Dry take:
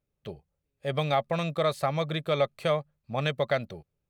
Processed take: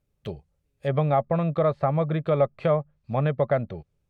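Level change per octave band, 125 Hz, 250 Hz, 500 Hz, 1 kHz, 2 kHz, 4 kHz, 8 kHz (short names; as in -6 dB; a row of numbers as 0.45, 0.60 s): +7.0 dB, +6.5 dB, +4.0 dB, +3.0 dB, -4.0 dB, under -10 dB, under -15 dB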